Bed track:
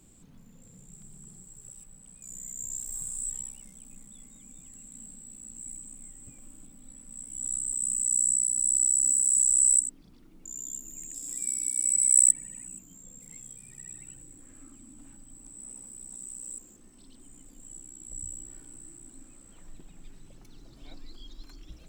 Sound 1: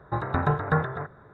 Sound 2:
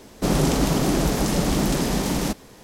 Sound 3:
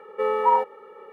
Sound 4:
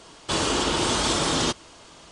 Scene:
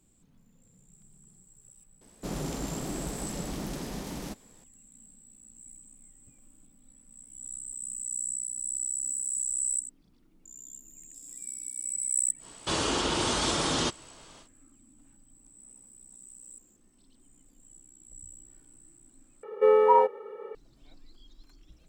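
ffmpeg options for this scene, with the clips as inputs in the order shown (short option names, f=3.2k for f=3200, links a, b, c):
-filter_complex "[0:a]volume=-8.5dB[a];[3:a]equalizer=f=430:t=o:w=0.72:g=8.5[b];[a]asplit=2[c][d];[c]atrim=end=19.434[e];[b]atrim=end=1.12,asetpts=PTS-STARTPTS,volume=-3dB[f];[d]atrim=start=20.546[g];[2:a]atrim=end=2.63,asetpts=PTS-STARTPTS,volume=-14.5dB,afade=t=in:d=0.004:c=hsin,afade=t=out:st=2.626:d=0.004:c=hsin,adelay=2010[h];[4:a]atrim=end=2.11,asetpts=PTS-STARTPTS,volume=-4.5dB,afade=t=in:d=0.1,afade=t=out:st=2.01:d=0.1,adelay=12380[i];[e][f]acrossfade=d=0.004:c1=hsin:c2=hsin[j];[j][g]acrossfade=d=0.004:c1=hsin:c2=hsin[k];[k][h][i]amix=inputs=3:normalize=0"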